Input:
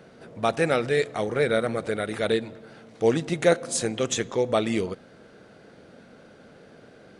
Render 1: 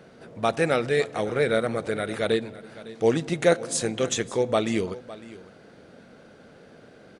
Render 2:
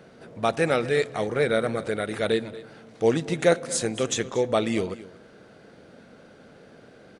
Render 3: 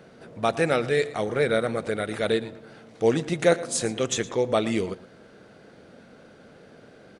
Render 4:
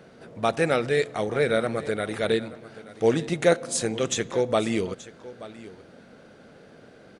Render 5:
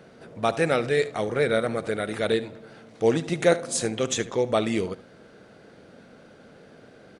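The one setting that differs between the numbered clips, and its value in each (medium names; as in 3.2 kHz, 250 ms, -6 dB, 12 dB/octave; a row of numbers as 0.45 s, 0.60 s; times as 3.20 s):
delay, time: 557 ms, 235 ms, 114 ms, 879 ms, 73 ms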